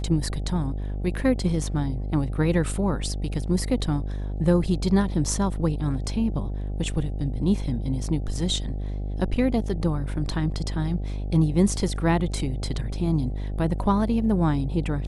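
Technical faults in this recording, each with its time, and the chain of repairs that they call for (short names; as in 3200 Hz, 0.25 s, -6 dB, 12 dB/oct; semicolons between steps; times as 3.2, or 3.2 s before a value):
buzz 50 Hz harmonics 16 -29 dBFS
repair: de-hum 50 Hz, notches 16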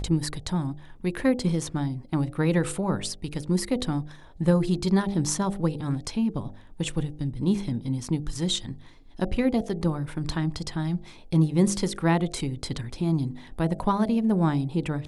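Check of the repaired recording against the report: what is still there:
none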